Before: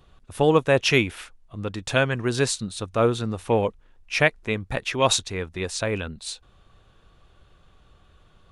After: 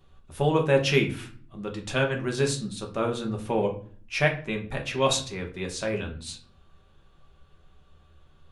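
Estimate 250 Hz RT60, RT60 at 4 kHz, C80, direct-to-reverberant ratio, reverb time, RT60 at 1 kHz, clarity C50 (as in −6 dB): 0.80 s, 0.35 s, 16.0 dB, 1.5 dB, 0.50 s, 0.45 s, 11.0 dB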